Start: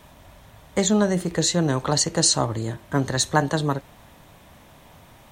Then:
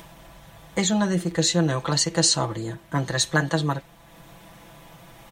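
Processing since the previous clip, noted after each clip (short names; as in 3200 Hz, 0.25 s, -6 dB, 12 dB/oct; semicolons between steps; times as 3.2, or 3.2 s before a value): comb 6 ms, depth 83%; dynamic EQ 2600 Hz, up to +5 dB, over -36 dBFS, Q 0.8; upward compressor, threshold -35 dBFS; gain -4.5 dB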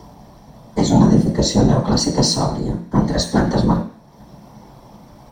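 sample leveller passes 1; whisperiser; reverb RT60 0.40 s, pre-delay 13 ms, DRR 1.5 dB; gain -10.5 dB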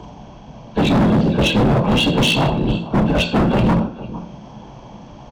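nonlinear frequency compression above 1100 Hz 1.5:1; echo 0.452 s -18.5 dB; hard clip -16.5 dBFS, distortion -7 dB; gain +4.5 dB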